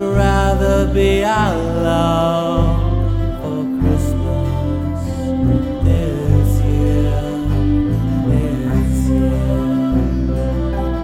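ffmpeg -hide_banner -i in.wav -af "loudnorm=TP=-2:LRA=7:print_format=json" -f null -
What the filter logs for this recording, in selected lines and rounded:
"input_i" : "-16.9",
"input_tp" : "-2.3",
"input_lra" : "2.3",
"input_thresh" : "-26.9",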